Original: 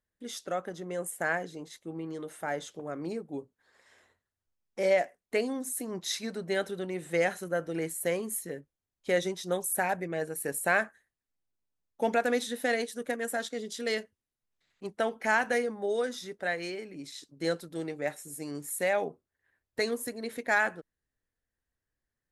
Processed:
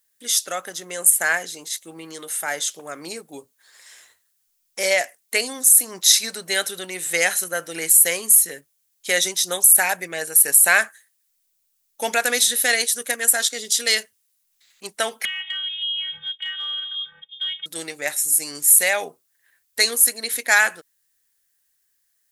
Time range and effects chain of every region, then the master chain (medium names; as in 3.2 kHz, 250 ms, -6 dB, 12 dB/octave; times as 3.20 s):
15.25–17.66 s: robot voice 344 Hz + frequency inversion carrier 3.6 kHz + compression 4:1, threshold -41 dBFS
whole clip: pre-emphasis filter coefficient 0.97; loudness maximiser +24.5 dB; trim -1 dB